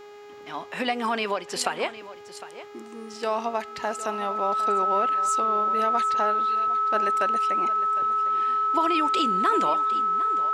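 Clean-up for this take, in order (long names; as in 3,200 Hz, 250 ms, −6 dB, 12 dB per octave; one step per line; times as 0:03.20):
hum removal 412.8 Hz, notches 18
notch filter 1,300 Hz, Q 30
echo removal 757 ms −15 dB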